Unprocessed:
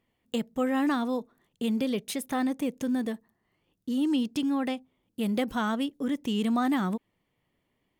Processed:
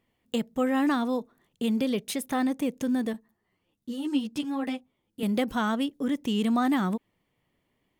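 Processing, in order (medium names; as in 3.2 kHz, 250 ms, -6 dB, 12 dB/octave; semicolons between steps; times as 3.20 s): 3.13–5.23 s: three-phase chorus; trim +1.5 dB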